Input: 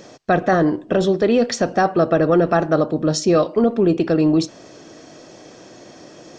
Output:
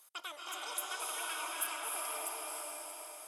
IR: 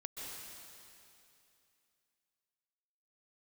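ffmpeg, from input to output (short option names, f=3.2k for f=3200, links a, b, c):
-filter_complex "[0:a]aderivative,asetrate=85995,aresample=44100[a];[1:a]atrim=start_sample=2205,asetrate=24696,aresample=44100[b];[a][b]afir=irnorm=-1:irlink=0,volume=-5.5dB"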